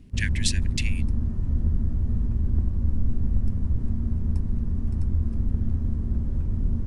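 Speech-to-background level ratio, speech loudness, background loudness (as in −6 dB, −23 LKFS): −3.0 dB, −30.5 LKFS, −27.5 LKFS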